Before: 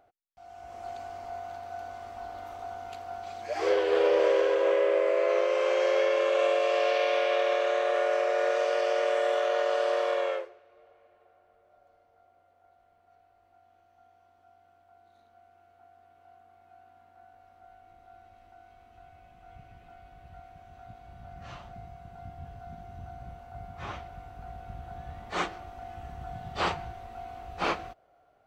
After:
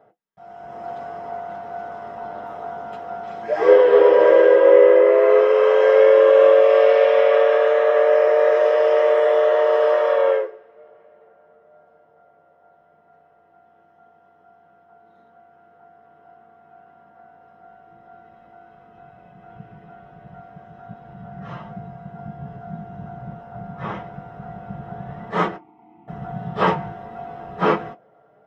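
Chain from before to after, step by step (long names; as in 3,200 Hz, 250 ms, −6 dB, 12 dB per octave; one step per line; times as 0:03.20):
0:25.56–0:26.08: formant filter u
convolution reverb, pre-delay 3 ms, DRR −3.5 dB
level −7.5 dB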